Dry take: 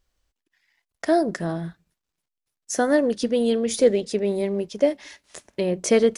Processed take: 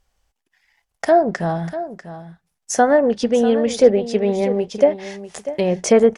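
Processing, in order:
treble cut that deepens with the level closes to 1,700 Hz, closed at −14.5 dBFS
thirty-one-band graphic EQ 315 Hz −8 dB, 800 Hz +8 dB, 4,000 Hz −4 dB
single-tap delay 644 ms −13 dB
level +5.5 dB

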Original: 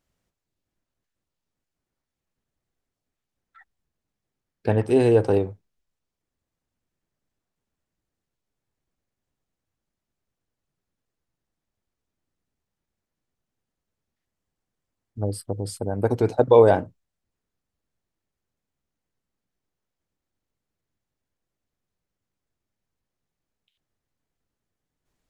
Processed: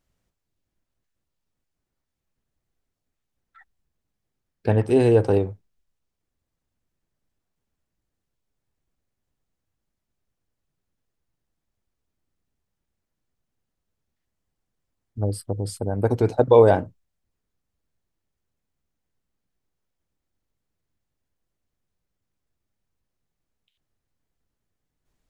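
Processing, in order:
low-shelf EQ 100 Hz +6 dB

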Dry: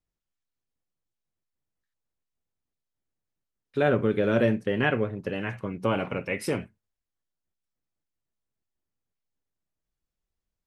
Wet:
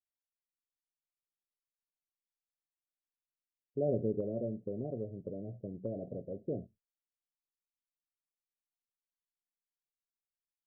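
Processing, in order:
noise gate with hold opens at −47 dBFS
Chebyshev low-pass filter 700 Hz, order 8
0:04.20–0:06.46: downward compressor 2 to 1, threshold −29 dBFS, peak gain reduction 6.5 dB
level −8 dB

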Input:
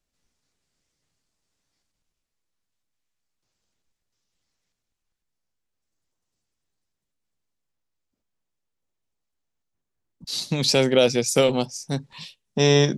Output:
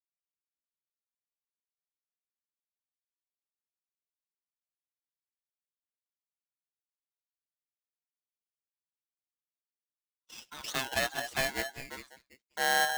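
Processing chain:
spectral dynamics exaggerated over time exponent 1.5
auto-filter band-pass saw down 0.21 Hz 420–2,000 Hz
noise gate −58 dBFS, range −25 dB
on a send: echo through a band-pass that steps 198 ms, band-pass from 450 Hz, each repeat 1.4 octaves, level −5.5 dB
on the sum: dynamic equaliser 2,500 Hz, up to +5 dB, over −55 dBFS
ring modulator with a square carrier 1,200 Hz

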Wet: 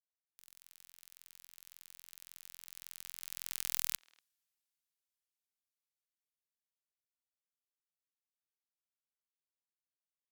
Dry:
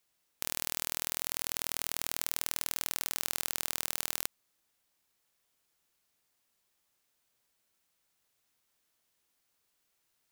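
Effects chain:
source passing by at 0:03.81, 27 m/s, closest 4.7 metres
guitar amp tone stack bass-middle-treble 5-5-5
far-end echo of a speakerphone 240 ms, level −23 dB
level +7 dB

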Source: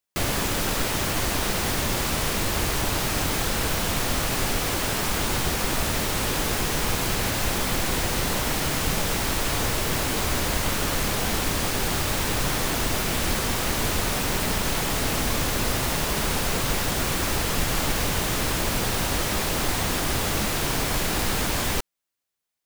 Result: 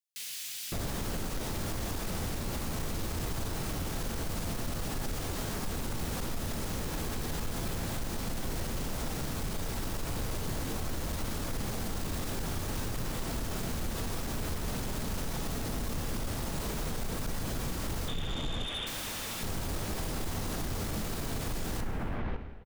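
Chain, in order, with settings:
0:18.08–0:18.87: voice inversion scrambler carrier 3,600 Hz
multiband delay without the direct sound highs, lows 560 ms, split 2,400 Hz
soft clipping −24 dBFS, distortion −12 dB
low-shelf EQ 350 Hz +8.5 dB
reverb whose tail is shaped and stops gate 420 ms falling, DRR 7.5 dB
brickwall limiter −18 dBFS, peak gain reduction 6 dB
level −8.5 dB

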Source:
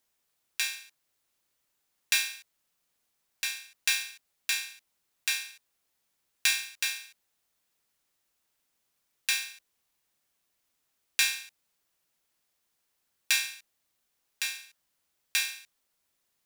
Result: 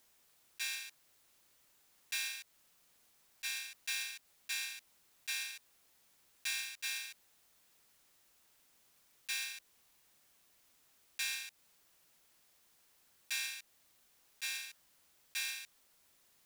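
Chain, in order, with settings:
volume swells 150 ms
downward compressor 4 to 1, threshold −45 dBFS, peak gain reduction 12.5 dB
level +8 dB

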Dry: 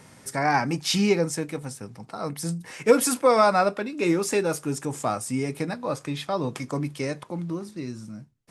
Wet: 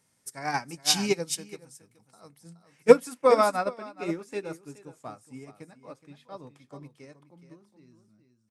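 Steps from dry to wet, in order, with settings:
high-shelf EQ 4,200 Hz +12 dB, from 0:02.38 −2 dB
single-tap delay 422 ms −8.5 dB
expander for the loud parts 2.5 to 1, over −30 dBFS
level +4 dB

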